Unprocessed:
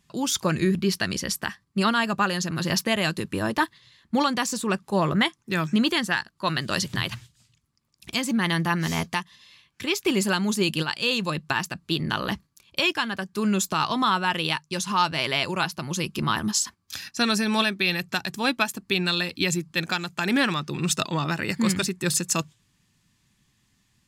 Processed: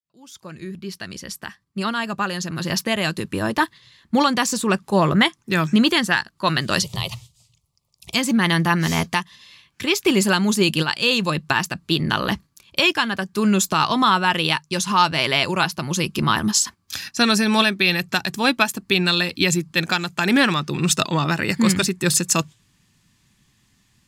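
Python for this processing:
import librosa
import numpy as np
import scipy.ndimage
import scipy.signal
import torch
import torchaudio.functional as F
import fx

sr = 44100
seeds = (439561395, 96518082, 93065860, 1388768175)

y = fx.fade_in_head(x, sr, length_s=4.47)
y = fx.fixed_phaser(y, sr, hz=660.0, stages=4, at=(6.82, 8.14))
y = y * 10.0 ** (5.5 / 20.0)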